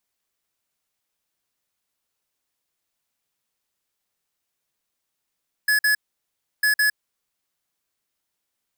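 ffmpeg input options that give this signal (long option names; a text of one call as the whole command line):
ffmpeg -f lavfi -i "aevalsrc='0.119*(2*lt(mod(1700*t,1),0.5)-1)*clip(min(mod(mod(t,0.95),0.16),0.11-mod(mod(t,0.95),0.16))/0.005,0,1)*lt(mod(t,0.95),0.32)':duration=1.9:sample_rate=44100" out.wav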